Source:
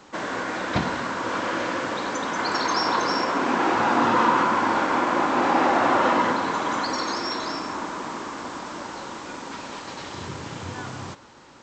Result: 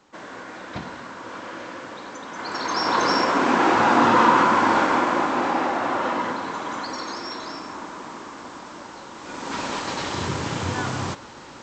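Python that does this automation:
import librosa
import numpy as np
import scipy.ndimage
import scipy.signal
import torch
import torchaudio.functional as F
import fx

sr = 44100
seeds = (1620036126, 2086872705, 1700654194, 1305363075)

y = fx.gain(x, sr, db=fx.line((2.27, -9.0), (3.05, 3.5), (4.8, 3.5), (5.77, -4.5), (9.13, -4.5), (9.59, 7.5)))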